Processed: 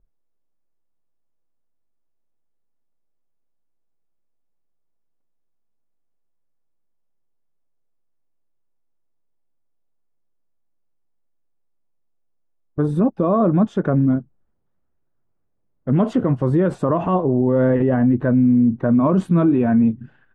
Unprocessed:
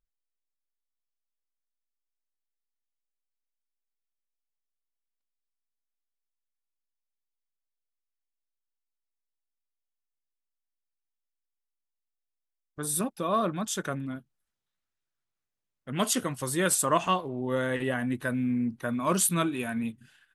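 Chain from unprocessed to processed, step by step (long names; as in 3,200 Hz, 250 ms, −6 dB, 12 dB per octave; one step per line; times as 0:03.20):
Bessel low-pass filter 520 Hz, order 2
boost into a limiter +27.5 dB
level −8 dB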